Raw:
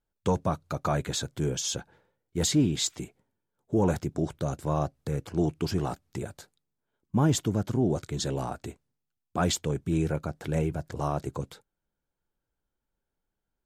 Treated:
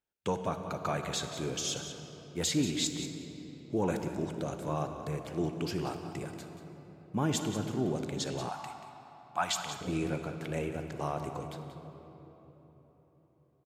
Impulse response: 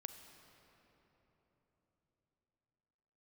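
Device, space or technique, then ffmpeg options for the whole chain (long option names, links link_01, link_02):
PA in a hall: -filter_complex "[0:a]highpass=frequency=190:poles=1,equalizer=frequency=2500:width_type=o:width=0.78:gain=6,aecho=1:1:183:0.266[link_01];[1:a]atrim=start_sample=2205[link_02];[link_01][link_02]afir=irnorm=-1:irlink=0,asettb=1/sr,asplit=3[link_03][link_04][link_05];[link_03]atrim=end=8.494[link_06];[link_04]atrim=start=8.49:end=9.81,asetpts=PTS-STARTPTS,afade=type=in:duration=0.004:curve=qsin,afade=type=out:start_time=1.316:duration=0.004:curve=qsin,lowshelf=frequency=610:width_type=q:width=3:gain=-10[link_07];[link_05]atrim=start=9.806[link_08];[link_06][link_07]acrossfade=duration=0.004:curve1=hsin:curve2=qsin[link_09];[link_09][link_08]acrossfade=duration=0.004:curve1=qsin:curve2=hsin"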